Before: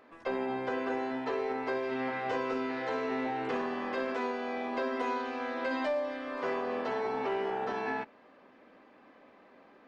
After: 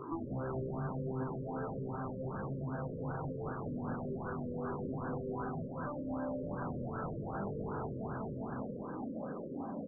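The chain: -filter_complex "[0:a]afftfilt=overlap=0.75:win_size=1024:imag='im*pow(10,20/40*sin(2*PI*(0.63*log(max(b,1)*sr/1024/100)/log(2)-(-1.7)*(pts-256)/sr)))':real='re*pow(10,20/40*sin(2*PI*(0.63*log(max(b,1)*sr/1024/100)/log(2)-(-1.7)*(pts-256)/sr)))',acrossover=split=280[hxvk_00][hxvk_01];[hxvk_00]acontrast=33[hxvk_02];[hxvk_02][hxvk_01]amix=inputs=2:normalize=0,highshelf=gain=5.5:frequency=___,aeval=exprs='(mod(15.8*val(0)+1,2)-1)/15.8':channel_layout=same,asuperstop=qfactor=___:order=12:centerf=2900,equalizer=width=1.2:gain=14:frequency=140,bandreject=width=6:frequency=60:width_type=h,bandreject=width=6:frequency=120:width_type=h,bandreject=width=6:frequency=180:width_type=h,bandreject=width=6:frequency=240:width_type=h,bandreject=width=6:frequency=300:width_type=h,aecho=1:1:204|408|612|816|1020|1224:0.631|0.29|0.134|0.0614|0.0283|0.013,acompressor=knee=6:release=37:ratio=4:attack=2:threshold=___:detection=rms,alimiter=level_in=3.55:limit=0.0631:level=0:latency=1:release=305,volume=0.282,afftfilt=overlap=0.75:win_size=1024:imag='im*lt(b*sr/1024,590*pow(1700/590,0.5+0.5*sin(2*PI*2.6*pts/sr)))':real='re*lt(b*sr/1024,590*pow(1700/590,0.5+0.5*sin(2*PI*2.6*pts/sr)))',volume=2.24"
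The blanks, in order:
3500, 7.1, 0.02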